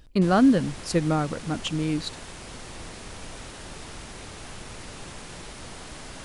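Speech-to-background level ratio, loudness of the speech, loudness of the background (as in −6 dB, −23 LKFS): 16.5 dB, −24.0 LKFS, −40.5 LKFS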